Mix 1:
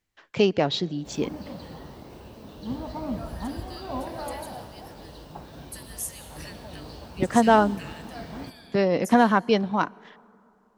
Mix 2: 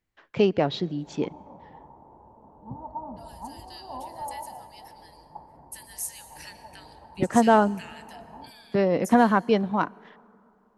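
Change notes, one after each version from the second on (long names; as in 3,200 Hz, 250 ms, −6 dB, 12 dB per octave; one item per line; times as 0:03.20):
first voice: add low-pass filter 2,200 Hz 6 dB per octave
background: add transistor ladder low-pass 950 Hz, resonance 80%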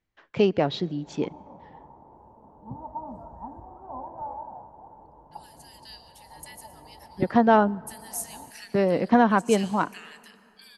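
second voice: entry +2.15 s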